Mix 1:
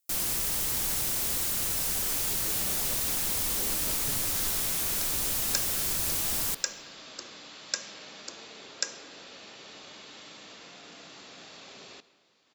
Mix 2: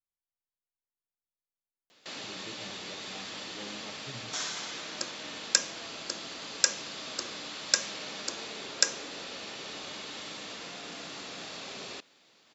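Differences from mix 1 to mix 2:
first sound: muted; second sound +8.5 dB; reverb: off

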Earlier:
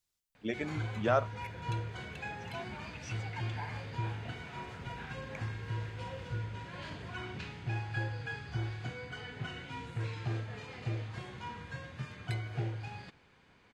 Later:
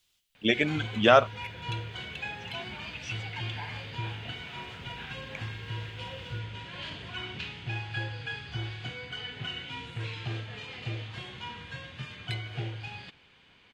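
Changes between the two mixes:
speech +9.0 dB; master: add peaking EQ 3.1 kHz +12.5 dB 0.91 oct

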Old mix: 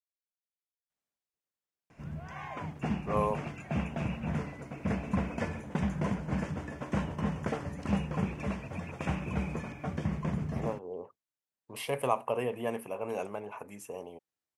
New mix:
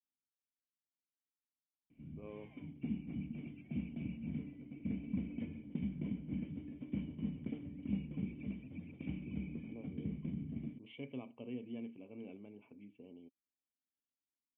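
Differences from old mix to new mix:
speech: entry -0.90 s; master: add cascade formant filter i

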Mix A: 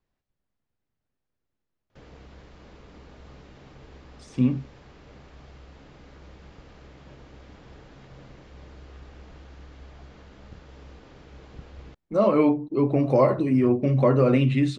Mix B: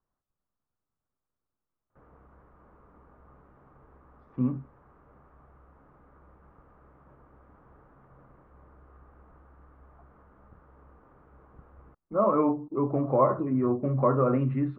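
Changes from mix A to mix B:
speech +4.0 dB; master: add four-pole ladder low-pass 1.4 kHz, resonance 55%

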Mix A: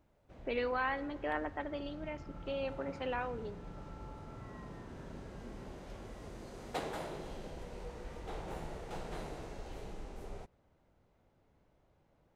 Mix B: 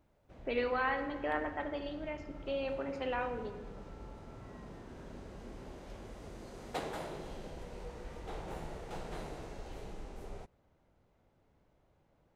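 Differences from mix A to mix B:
speech: send +11.0 dB; second sound -5.0 dB

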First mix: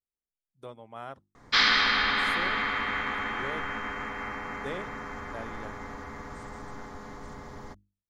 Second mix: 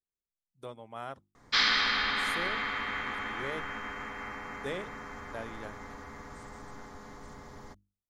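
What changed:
background -5.0 dB; master: add treble shelf 4.5 kHz +5.5 dB

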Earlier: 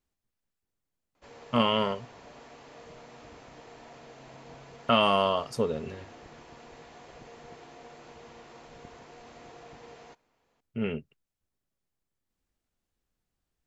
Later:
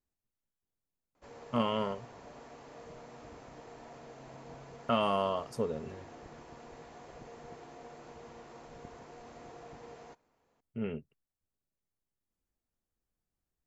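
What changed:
speech -5.0 dB; master: add peaking EQ 3.2 kHz -6.5 dB 1.8 oct

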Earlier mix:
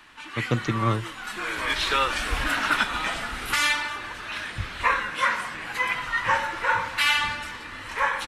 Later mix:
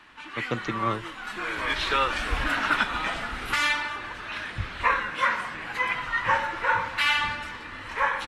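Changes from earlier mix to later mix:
speech: add high-pass 360 Hz 6 dB/octave; master: add treble shelf 5.7 kHz -11.5 dB

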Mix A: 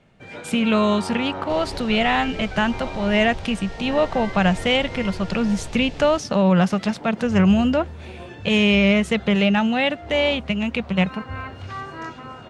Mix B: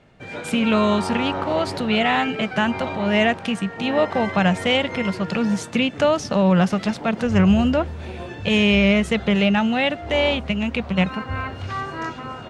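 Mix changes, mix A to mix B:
first sound +4.5 dB; second sound: muted

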